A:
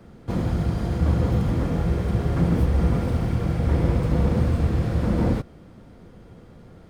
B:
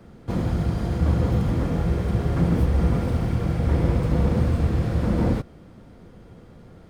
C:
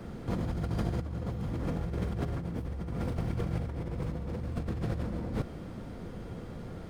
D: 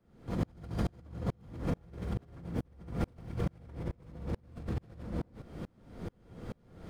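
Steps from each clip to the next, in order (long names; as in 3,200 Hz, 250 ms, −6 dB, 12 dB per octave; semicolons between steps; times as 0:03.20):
no processing that can be heard
compressor whose output falls as the input rises −30 dBFS, ratio −1; level −3.5 dB
tremolo with a ramp in dB swelling 2.3 Hz, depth 35 dB; level +4.5 dB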